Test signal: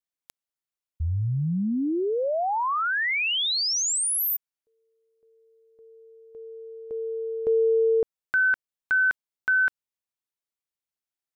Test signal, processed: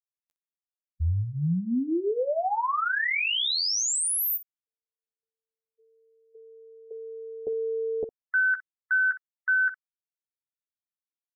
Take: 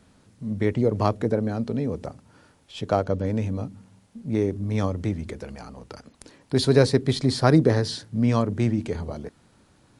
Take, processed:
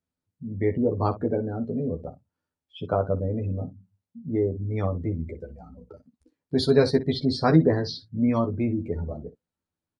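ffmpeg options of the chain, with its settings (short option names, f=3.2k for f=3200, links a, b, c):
-af "afftdn=nr=30:nf=-33,aecho=1:1:12|61:0.668|0.188,volume=-3dB"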